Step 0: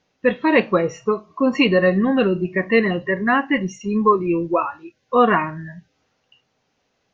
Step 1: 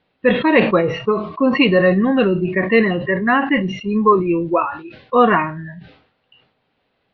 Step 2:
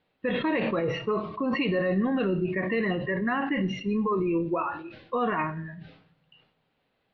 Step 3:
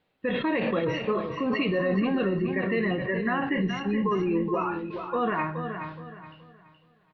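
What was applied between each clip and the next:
steep low-pass 4.2 kHz 48 dB/octave; decay stretcher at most 94 dB/s; trim +2 dB
peak limiter -12.5 dBFS, peak gain reduction 11 dB; on a send at -14.5 dB: reverberation RT60 0.70 s, pre-delay 6 ms; on the sum: trim -6.5 dB
feedback delay 422 ms, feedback 30%, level -8 dB

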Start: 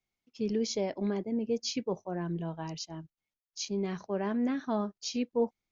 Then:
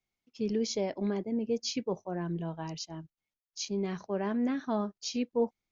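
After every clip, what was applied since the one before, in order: no audible change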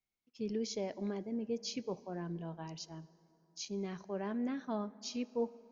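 plate-style reverb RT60 3.6 s, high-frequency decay 0.45×, DRR 18.5 dB; trim -6.5 dB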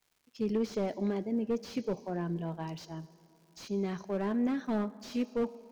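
crackle 220 per s -62 dBFS; slew-rate limiter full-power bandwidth 9.5 Hz; trim +6.5 dB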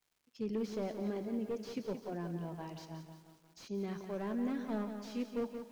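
bit-crushed delay 176 ms, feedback 55%, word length 9-bit, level -8 dB; trim -6 dB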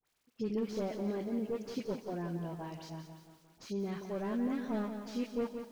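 phase dispersion highs, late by 50 ms, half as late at 1.5 kHz; trim +2 dB

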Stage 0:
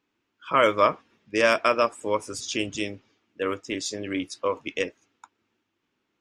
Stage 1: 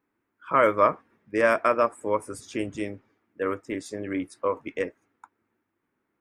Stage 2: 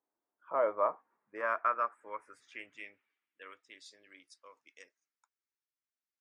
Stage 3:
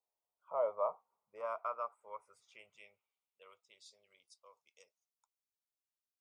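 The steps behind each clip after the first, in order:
high-order bell 4.3 kHz -14 dB
band-pass sweep 690 Hz -> 5.6 kHz, 0.55–4.48 s; trim -4.5 dB
static phaser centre 710 Hz, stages 4; trim -3 dB

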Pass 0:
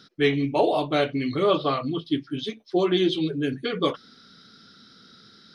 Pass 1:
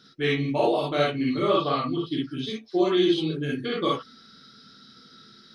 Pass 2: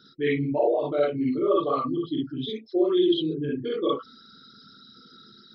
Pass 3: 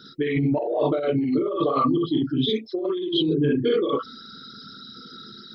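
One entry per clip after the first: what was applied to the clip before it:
gated-style reverb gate 80 ms rising, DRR -3 dB; trim -5 dB
resonances exaggerated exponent 2
compressor with a negative ratio -28 dBFS, ratio -1; trim +5.5 dB

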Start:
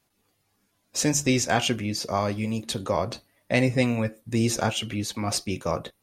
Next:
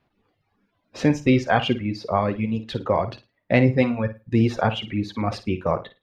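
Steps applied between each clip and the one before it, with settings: reverb removal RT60 1.4 s; distance through air 350 m; flutter echo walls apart 9.3 m, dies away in 0.26 s; trim +6 dB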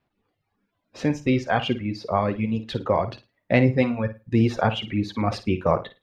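gain riding 2 s; trim -1.5 dB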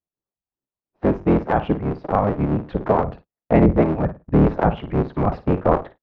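cycle switcher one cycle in 3, inverted; low-pass 1.1 kHz 12 dB/octave; gate -43 dBFS, range -26 dB; trim +4.5 dB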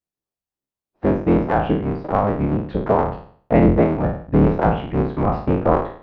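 spectral sustain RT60 0.52 s; trim -1 dB

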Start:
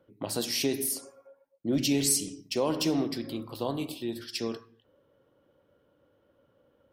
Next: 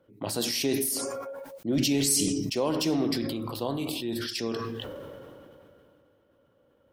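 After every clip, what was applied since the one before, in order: decay stretcher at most 21 dB/s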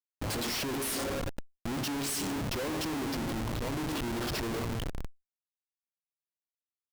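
Schmitt trigger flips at -33 dBFS; level flattener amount 50%; trim -3 dB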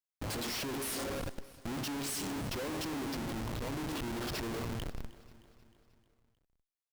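feedback delay 310 ms, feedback 56%, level -19 dB; trim -4 dB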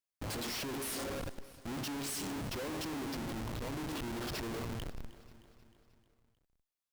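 saturation -35 dBFS, distortion -23 dB

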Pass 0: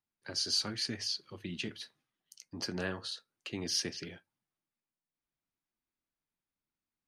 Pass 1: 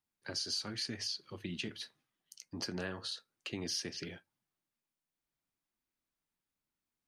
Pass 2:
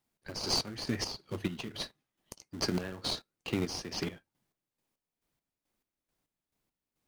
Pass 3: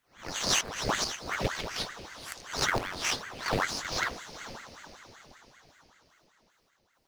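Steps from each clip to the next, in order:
compression 3:1, threshold -37 dBFS, peak gain reduction 8.5 dB; trim +1 dB
in parallel at -5 dB: sample-rate reducer 1.7 kHz, jitter 20%; on the sum: square tremolo 2.3 Hz, depth 65%, duty 40%; trim +6 dB
reverse spectral sustain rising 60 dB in 0.37 s; echo that smears into a reverb 470 ms, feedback 49%, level -12 dB; ring modulator with a swept carrier 980 Hz, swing 85%, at 5.2 Hz; trim +5 dB

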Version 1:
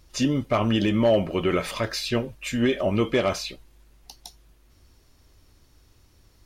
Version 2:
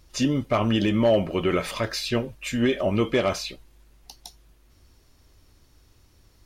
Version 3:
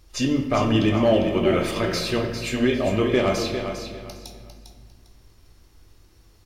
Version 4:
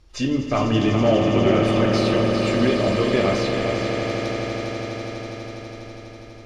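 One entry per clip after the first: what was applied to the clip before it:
no audible change
feedback delay 401 ms, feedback 25%, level -8 dB; on a send at -3.5 dB: reverberation RT60 1.7 s, pre-delay 3 ms
distance through air 71 m; echo with a slow build-up 82 ms, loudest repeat 8, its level -11 dB

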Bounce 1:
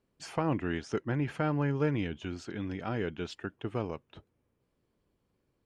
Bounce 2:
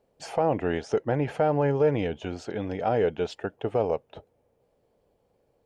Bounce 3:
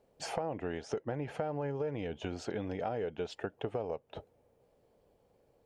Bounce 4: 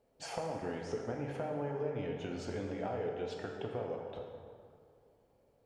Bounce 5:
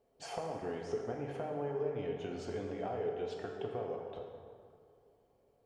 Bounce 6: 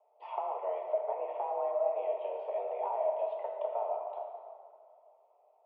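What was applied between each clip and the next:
high-order bell 610 Hz +12 dB 1.2 oct; peak limiter -16.5 dBFS, peak gain reduction 7 dB; trim +3 dB
compression 6:1, threshold -33 dBFS, peak gain reduction 14.5 dB
plate-style reverb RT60 2.2 s, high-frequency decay 0.6×, DRR 0 dB; trim -4.5 dB
small resonant body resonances 410/710/1100/3100 Hz, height 7 dB; trim -3 dB
mistuned SSB +200 Hz 200–2400 Hz; static phaser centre 680 Hz, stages 4; trim +5.5 dB

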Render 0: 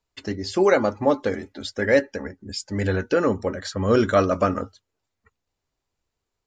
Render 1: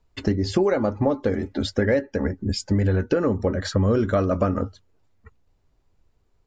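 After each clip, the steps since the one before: tilt EQ -2.5 dB/octave; compression 6:1, threshold -26 dBFS, peak gain reduction 15 dB; trim +7.5 dB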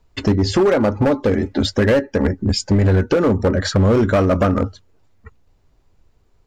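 overload inside the chain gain 18 dB; trim +7.5 dB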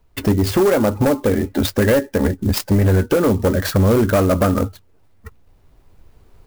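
recorder AGC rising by 6.1 dB/s; sampling jitter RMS 0.034 ms

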